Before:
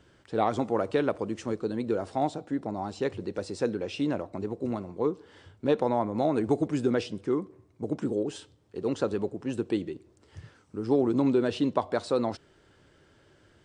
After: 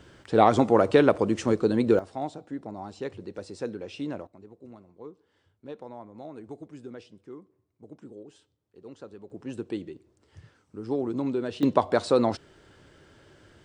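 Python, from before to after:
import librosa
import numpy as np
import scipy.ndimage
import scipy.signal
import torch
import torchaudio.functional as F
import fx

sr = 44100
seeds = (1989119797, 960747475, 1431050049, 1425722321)

y = fx.gain(x, sr, db=fx.steps((0.0, 7.5), (1.99, -5.0), (4.27, -16.0), (9.3, -4.5), (11.63, 5.0)))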